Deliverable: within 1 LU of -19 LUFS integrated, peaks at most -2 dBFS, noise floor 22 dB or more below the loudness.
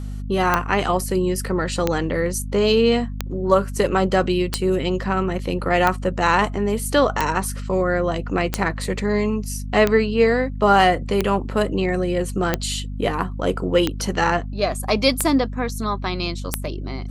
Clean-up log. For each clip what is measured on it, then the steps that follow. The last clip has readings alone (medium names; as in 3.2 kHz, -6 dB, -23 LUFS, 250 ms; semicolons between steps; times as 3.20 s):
clicks found 13; hum 50 Hz; highest harmonic 250 Hz; hum level -27 dBFS; loudness -21.0 LUFS; peak level -1.5 dBFS; loudness target -19.0 LUFS
-> de-click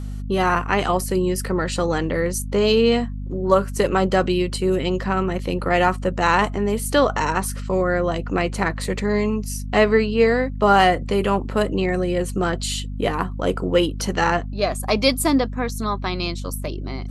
clicks found 0; hum 50 Hz; highest harmonic 250 Hz; hum level -27 dBFS
-> hum notches 50/100/150/200/250 Hz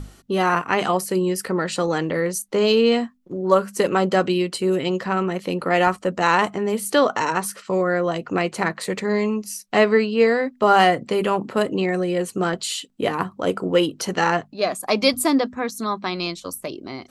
hum not found; loudness -21.5 LUFS; peak level -2.0 dBFS; loudness target -19.0 LUFS
-> trim +2.5 dB; peak limiter -2 dBFS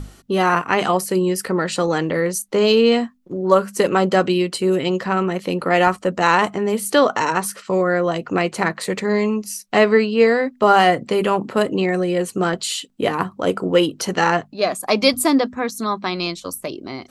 loudness -19.0 LUFS; peak level -2.0 dBFS; noise floor -50 dBFS